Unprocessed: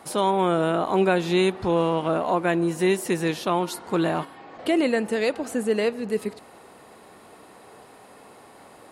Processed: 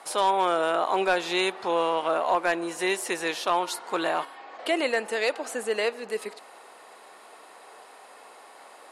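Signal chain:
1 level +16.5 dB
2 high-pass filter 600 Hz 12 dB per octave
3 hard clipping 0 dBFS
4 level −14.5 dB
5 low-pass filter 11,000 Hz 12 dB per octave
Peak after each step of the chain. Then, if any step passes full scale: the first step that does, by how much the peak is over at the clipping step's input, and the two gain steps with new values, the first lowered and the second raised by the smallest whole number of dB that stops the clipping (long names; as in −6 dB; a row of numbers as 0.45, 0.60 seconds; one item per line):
+6.5, +6.5, 0.0, −14.5, −14.0 dBFS
step 1, 6.5 dB
step 1 +9.5 dB, step 4 −7.5 dB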